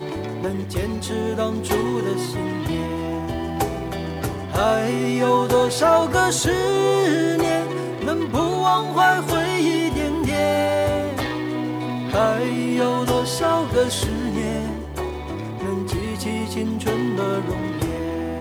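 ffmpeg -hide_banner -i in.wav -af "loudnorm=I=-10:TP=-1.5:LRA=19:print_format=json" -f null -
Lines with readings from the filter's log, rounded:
"input_i" : "-22.1",
"input_tp" : "-6.7",
"input_lra" : "5.5",
"input_thresh" : "-32.1",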